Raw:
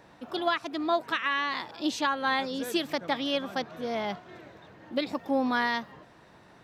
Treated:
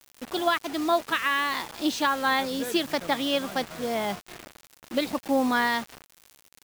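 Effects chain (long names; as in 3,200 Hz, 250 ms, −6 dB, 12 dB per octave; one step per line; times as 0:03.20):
surface crackle 160 per second −40 dBFS
bit reduction 7 bits
level +3 dB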